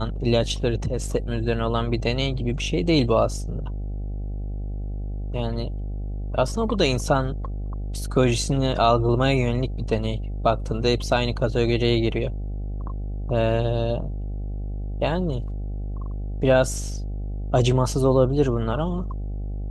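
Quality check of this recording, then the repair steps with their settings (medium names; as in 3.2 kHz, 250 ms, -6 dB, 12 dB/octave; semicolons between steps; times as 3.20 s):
buzz 50 Hz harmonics 16 -29 dBFS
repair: de-hum 50 Hz, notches 16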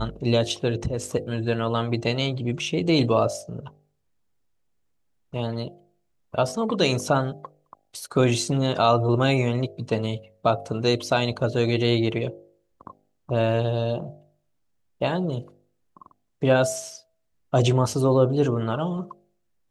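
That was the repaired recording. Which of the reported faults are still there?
nothing left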